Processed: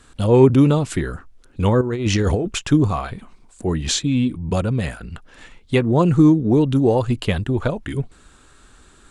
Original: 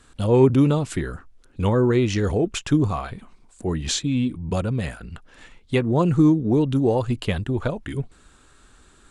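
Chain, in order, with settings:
0:01.81–0:02.51: compressor whose output falls as the input rises −22 dBFS, ratio −0.5
level +3.5 dB

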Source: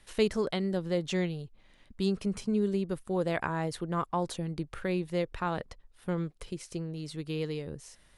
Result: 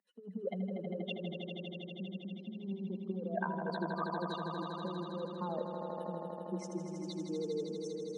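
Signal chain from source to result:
expanding power law on the bin magnitudes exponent 3.3
treble cut that deepens with the level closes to 960 Hz, closed at −25.5 dBFS
compressor whose output falls as the input rises −34 dBFS, ratio −0.5
Chebyshev high-pass with heavy ripple 180 Hz, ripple 3 dB
on a send: echo that builds up and dies away 80 ms, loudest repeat 5, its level −8 dB
on the sum: level −1 dB

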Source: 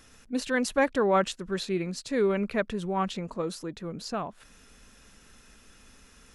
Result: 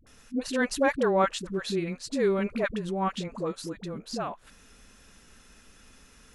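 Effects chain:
all-pass dispersion highs, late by 68 ms, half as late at 490 Hz

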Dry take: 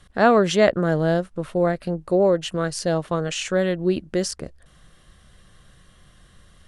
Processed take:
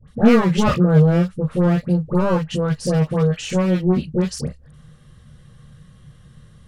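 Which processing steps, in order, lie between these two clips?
wavefolder on the positive side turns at −18.5 dBFS
low-shelf EQ 200 Hz +8 dB
all-pass dispersion highs, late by 81 ms, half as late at 1,300 Hz
on a send: convolution reverb, pre-delay 3 ms, DRR 5 dB
on the sum: level −2.5 dB

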